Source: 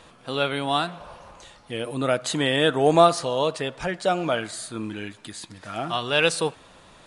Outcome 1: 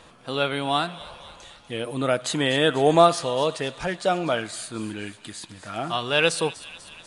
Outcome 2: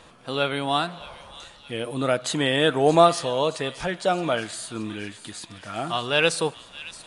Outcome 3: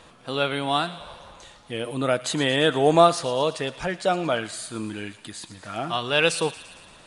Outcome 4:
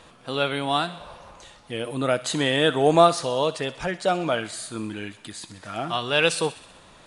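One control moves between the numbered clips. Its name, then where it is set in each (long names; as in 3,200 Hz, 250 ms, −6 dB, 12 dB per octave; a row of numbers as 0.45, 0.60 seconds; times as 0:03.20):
delay with a high-pass on its return, delay time: 246, 623, 114, 63 milliseconds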